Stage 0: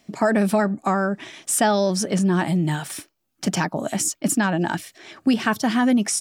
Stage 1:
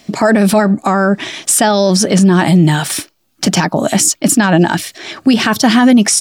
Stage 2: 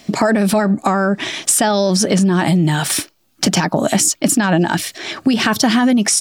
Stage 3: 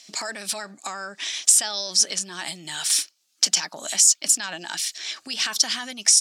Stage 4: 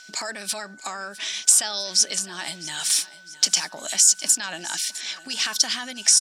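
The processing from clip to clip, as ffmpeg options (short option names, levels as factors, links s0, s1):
-af "equalizer=f=4200:w=1.4:g=4,alimiter=level_in=5.31:limit=0.891:release=50:level=0:latency=1,volume=0.891"
-af "acompressor=threshold=0.251:ratio=6,volume=1.12"
-af "bandpass=f=6100:t=q:w=1.2:csg=0,volume=1.19"
-af "aecho=1:1:656|1312|1968|2624:0.126|0.0592|0.0278|0.0131,aeval=exprs='val(0)+0.00501*sin(2*PI*1500*n/s)':c=same"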